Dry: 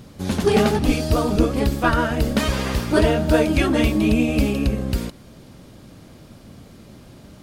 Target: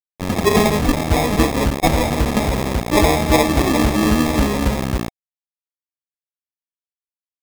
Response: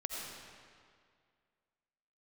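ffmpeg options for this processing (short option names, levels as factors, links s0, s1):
-af "aresample=11025,acrusher=bits=3:mix=0:aa=0.000001,aresample=44100,adynamicequalizer=threshold=0.0126:dfrequency=700:dqfactor=7.9:tfrequency=700:tqfactor=7.9:attack=5:release=100:ratio=0.375:range=2.5:mode=boostabove:tftype=bell,acrusher=samples=30:mix=1:aa=0.000001,volume=1.19"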